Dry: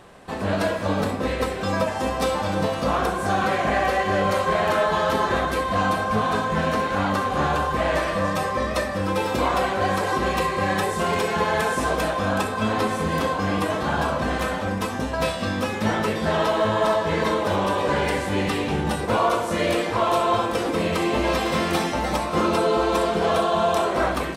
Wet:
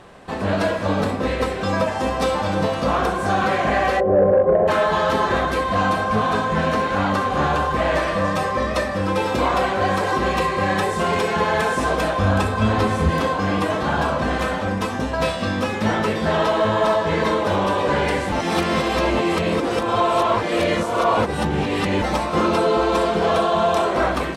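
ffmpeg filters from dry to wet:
-filter_complex "[0:a]asplit=3[a][b][c];[a]afade=t=out:st=3.99:d=0.02[d];[b]lowpass=f=520:t=q:w=2.9,afade=t=in:st=3.99:d=0.02,afade=t=out:st=4.67:d=0.02[e];[c]afade=t=in:st=4.67:d=0.02[f];[d][e][f]amix=inputs=3:normalize=0,asettb=1/sr,asplit=3[g][h][i];[g]atrim=end=12.184[j];[h]atrim=start=12.18:end=13.1,asetpts=PTS-STARTPTS,afade=t=in:d=0.004:c=qsin,afade=t=out:st=0.916:d=0.004:c=qsin,equalizer=f=69:w=1:g=14[k];[i]atrim=start=13.096[l];[j][k]acrossfade=d=0.004:c1=hsin:c2=qsin[m];[m][l]acrossfade=d=0.004:c1=qsin:c2=hsin,asplit=3[n][o][p];[n]atrim=end=18.322[q];[o]atrim=start=18.318:end=22.022,asetpts=PTS-STARTPTS,areverse[r];[p]atrim=start=22.018[s];[q][r]acrossfade=d=0.004:c1=hsin:c2=hsin[t];[t][s]acrossfade=d=0.004:c1=hsin:c2=hsin,acontrast=79,highshelf=f=11k:g=-12,volume=-4dB"

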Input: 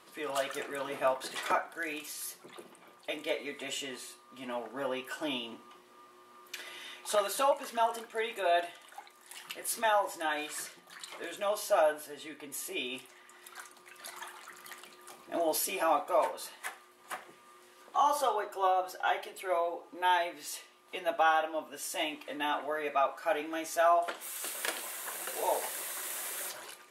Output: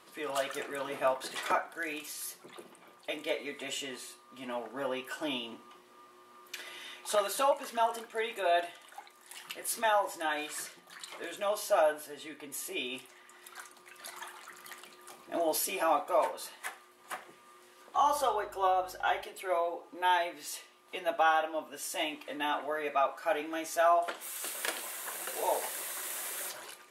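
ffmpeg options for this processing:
-filter_complex "[0:a]asettb=1/sr,asplit=3[a][b][c];[a]atrim=end=17.964[d];[b]atrim=start=17.96:end=19.23,asetpts=PTS-STARTPTS,afade=t=in:d=0.004:c=qsin,afade=t=out:st=1.266:d=0.004:c=qsin,aeval=exprs='val(0)+0.000891*(sin(2*PI*50*n/s)+sin(2*PI*2*50*n/s)/2+sin(2*PI*3*50*n/s)/3+sin(2*PI*4*50*n/s)/4+sin(2*PI*5*50*n/s)/5)':c=same[e];[c]atrim=start=19.226[f];[d][e]acrossfade=d=0.004:c1=hsin:c2=qsin[g];[g][f]acrossfade=d=0.004:c1=qsin:c2=hsin"

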